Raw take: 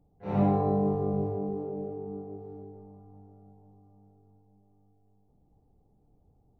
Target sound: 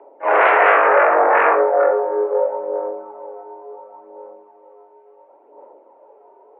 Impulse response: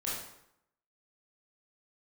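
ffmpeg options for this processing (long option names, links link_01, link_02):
-filter_complex "[0:a]aphaser=in_gain=1:out_gain=1:delay=3.7:decay=0.57:speed=0.71:type=sinusoidal,aeval=exprs='0.2*sin(PI/2*5.62*val(0)/0.2)':channel_layout=same,asplit=2[link_01][link_02];[1:a]atrim=start_sample=2205,atrim=end_sample=6174,lowshelf=frequency=470:gain=8[link_03];[link_02][link_03]afir=irnorm=-1:irlink=0,volume=-5.5dB[link_04];[link_01][link_04]amix=inputs=2:normalize=0,highpass=frequency=350:width_type=q:width=0.5412,highpass=frequency=350:width_type=q:width=1.307,lowpass=frequency=2300:width_type=q:width=0.5176,lowpass=frequency=2300:width_type=q:width=0.7071,lowpass=frequency=2300:width_type=q:width=1.932,afreqshift=120,volume=1.5dB"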